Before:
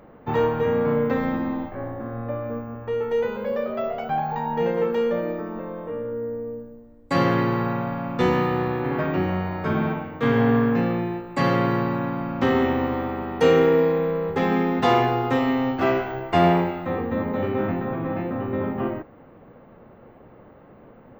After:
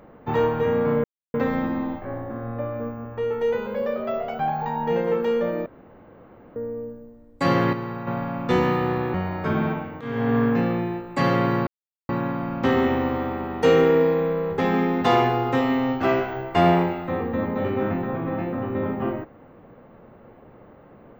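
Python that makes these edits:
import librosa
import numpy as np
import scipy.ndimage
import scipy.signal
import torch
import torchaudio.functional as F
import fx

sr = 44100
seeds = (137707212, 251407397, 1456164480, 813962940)

y = fx.edit(x, sr, fx.insert_silence(at_s=1.04, length_s=0.3),
    fx.room_tone_fill(start_s=5.36, length_s=0.9),
    fx.clip_gain(start_s=7.43, length_s=0.34, db=-7.5),
    fx.cut(start_s=8.84, length_s=0.5),
    fx.fade_in_from(start_s=10.21, length_s=0.43, floor_db=-16.5),
    fx.insert_silence(at_s=11.87, length_s=0.42), tone=tone)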